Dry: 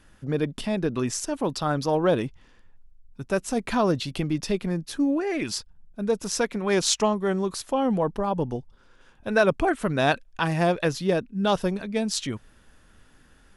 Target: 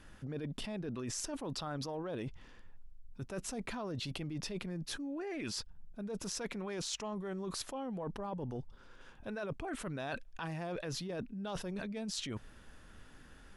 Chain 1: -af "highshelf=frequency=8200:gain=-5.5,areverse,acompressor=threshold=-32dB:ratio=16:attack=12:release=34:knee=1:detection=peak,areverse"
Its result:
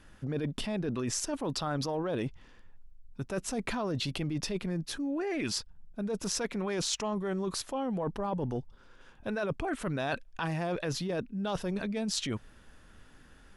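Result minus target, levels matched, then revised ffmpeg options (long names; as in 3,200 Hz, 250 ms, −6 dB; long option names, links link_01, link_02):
downward compressor: peak gain reduction −7.5 dB
-af "highshelf=frequency=8200:gain=-5.5,areverse,acompressor=threshold=-40dB:ratio=16:attack=12:release=34:knee=1:detection=peak,areverse"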